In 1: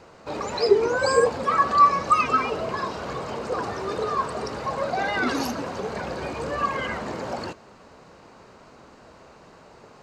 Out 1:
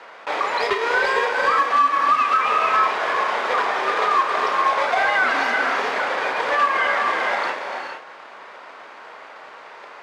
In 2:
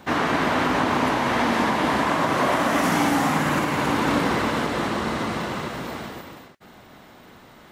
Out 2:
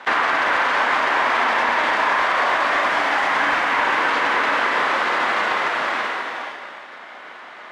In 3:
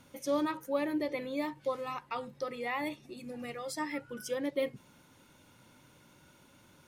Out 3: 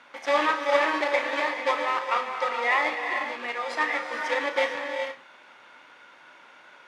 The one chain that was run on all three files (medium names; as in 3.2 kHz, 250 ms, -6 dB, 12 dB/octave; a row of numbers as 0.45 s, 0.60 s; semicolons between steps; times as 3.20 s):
block-companded coder 3-bit; gated-style reverb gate 480 ms rising, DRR 4.5 dB; in parallel at -5 dB: sample-and-hold 31×; on the sum: high-pass 1.1 kHz 12 dB/octave; compression 8:1, threshold -27 dBFS; on a send: flutter echo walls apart 5.7 m, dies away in 0.2 s; on the sum: overload inside the chain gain 23.5 dB; low-pass 2.1 kHz 12 dB/octave; peak normalisation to -9 dBFS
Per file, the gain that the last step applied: +14.0 dB, +14.0 dB, +15.5 dB